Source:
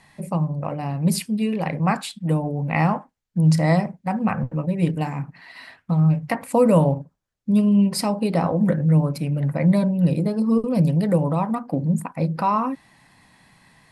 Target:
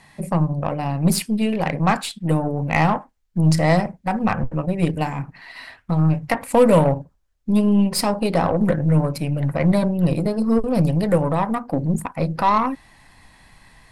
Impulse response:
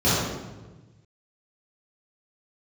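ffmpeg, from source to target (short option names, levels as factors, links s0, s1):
-af "asubboost=boost=7.5:cutoff=55,aeval=exprs='0.447*(cos(1*acos(clip(val(0)/0.447,-1,1)))-cos(1*PI/2))+0.0224*(cos(8*acos(clip(val(0)/0.447,-1,1)))-cos(8*PI/2))':c=same,volume=1.5"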